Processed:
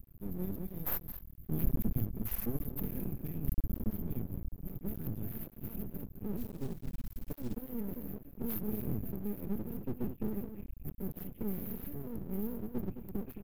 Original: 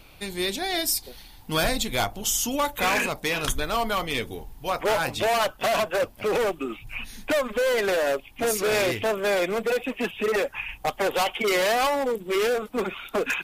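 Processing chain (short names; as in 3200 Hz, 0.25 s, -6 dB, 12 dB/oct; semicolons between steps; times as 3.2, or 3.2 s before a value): octaver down 1 oct, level -4 dB; inverse Chebyshev band-stop 450–8500 Hz, stop band 40 dB; outdoor echo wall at 37 m, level -9 dB; half-wave rectifier; 6.37–7.57 companded quantiser 6-bit; gain +2.5 dB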